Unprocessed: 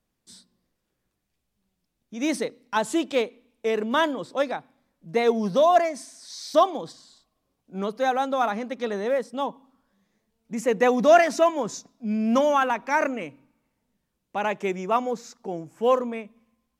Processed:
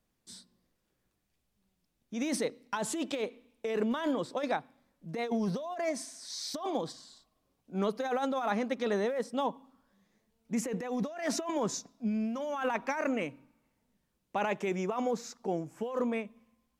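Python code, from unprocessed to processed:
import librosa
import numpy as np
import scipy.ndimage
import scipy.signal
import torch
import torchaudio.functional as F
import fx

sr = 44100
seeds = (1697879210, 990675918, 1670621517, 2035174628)

y = fx.over_compress(x, sr, threshold_db=-27.0, ratio=-1.0)
y = y * 10.0 ** (-5.0 / 20.0)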